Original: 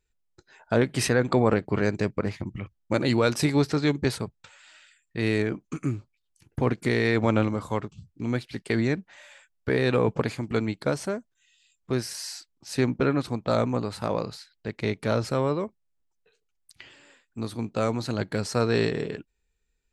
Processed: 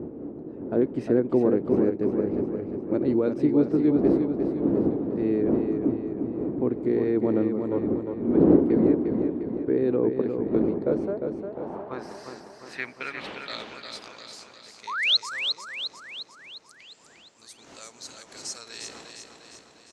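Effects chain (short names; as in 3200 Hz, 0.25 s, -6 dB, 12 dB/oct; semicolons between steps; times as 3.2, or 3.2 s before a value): wind noise 330 Hz -27 dBFS; painted sound rise, 14.87–15.17, 860–4400 Hz -12 dBFS; band-pass sweep 330 Hz -> 6700 Hz, 10.66–14.27; on a send: feedback echo 0.353 s, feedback 54%, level -6 dB; on the sum: gain +4.5 dB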